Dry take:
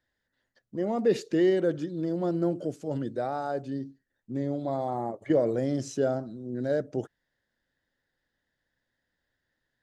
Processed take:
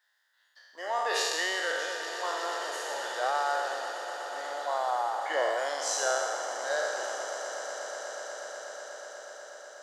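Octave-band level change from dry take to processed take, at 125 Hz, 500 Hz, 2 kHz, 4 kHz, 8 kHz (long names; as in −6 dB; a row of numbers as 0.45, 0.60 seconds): below −40 dB, −4.5 dB, +13.0 dB, +13.5 dB, +15.0 dB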